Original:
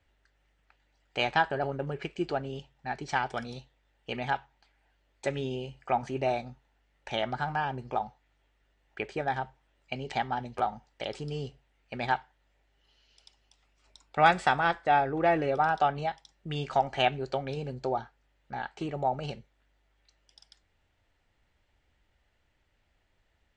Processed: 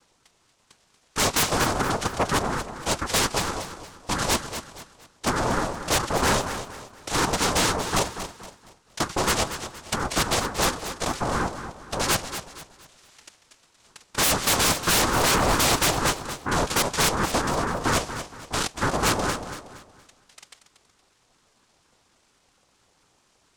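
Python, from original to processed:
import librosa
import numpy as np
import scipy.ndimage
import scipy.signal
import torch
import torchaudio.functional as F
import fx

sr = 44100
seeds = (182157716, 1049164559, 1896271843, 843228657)

p1 = fx.noise_vocoder(x, sr, seeds[0], bands=2)
p2 = fx.fold_sine(p1, sr, drive_db=18, ceiling_db=-6.0)
p3 = p2 + fx.echo_feedback(p2, sr, ms=234, feedback_pct=36, wet_db=-10.5, dry=0)
p4 = fx.ring_lfo(p3, sr, carrier_hz=460.0, swing_pct=55, hz=4.3)
y = p4 * librosa.db_to_amplitude(-8.0)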